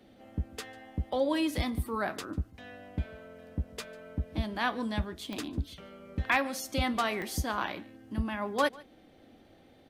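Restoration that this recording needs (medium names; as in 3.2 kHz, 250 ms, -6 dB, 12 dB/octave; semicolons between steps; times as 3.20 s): clip repair -15 dBFS; de-click; inverse comb 146 ms -23 dB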